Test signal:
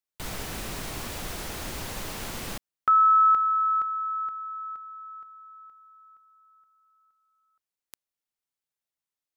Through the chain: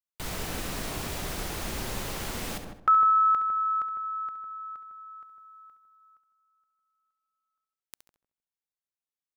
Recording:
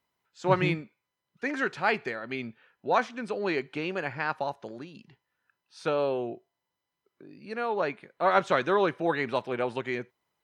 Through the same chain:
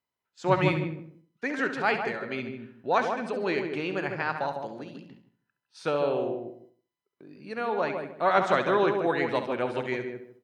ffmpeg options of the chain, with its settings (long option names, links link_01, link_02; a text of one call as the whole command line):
ffmpeg -i in.wav -filter_complex "[0:a]asplit=2[link_01][link_02];[link_02]adelay=154,lowpass=frequency=880:poles=1,volume=-4dB,asplit=2[link_03][link_04];[link_04]adelay=154,lowpass=frequency=880:poles=1,volume=0.25,asplit=2[link_05][link_06];[link_06]adelay=154,lowpass=frequency=880:poles=1,volume=0.25[link_07];[link_03][link_05][link_07]amix=inputs=3:normalize=0[link_08];[link_01][link_08]amix=inputs=2:normalize=0,agate=range=-9dB:threshold=-53dB:ratio=3:release=133:detection=rms,asplit=2[link_09][link_10];[link_10]aecho=0:1:68|136|204:0.299|0.0925|0.0287[link_11];[link_09][link_11]amix=inputs=2:normalize=0" out.wav